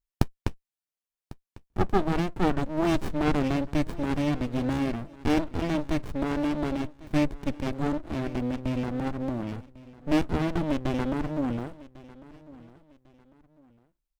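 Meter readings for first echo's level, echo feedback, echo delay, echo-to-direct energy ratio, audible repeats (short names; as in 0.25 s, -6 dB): -20.0 dB, 31%, 1.099 s, -19.5 dB, 2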